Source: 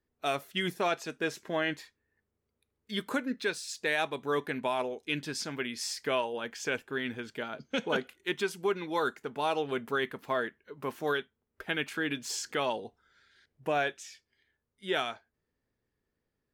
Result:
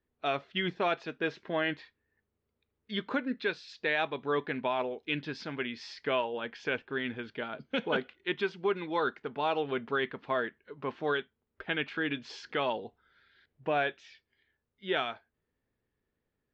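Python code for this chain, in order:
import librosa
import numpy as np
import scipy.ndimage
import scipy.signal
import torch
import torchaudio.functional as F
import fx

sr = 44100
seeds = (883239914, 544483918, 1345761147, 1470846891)

y = scipy.signal.sosfilt(scipy.signal.cheby2(4, 60, 11000.0, 'lowpass', fs=sr, output='sos'), x)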